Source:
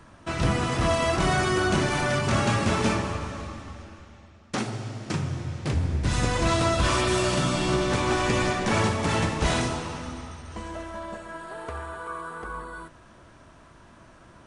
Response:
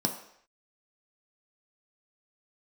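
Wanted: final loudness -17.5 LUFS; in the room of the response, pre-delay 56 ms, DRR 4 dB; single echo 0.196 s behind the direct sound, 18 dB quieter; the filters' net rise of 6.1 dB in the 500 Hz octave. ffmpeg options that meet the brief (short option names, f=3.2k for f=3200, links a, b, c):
-filter_complex "[0:a]equalizer=f=500:t=o:g=8.5,aecho=1:1:196:0.126,asplit=2[a][b];[1:a]atrim=start_sample=2205,adelay=56[c];[b][c]afir=irnorm=-1:irlink=0,volume=-11dB[d];[a][d]amix=inputs=2:normalize=0,volume=2dB"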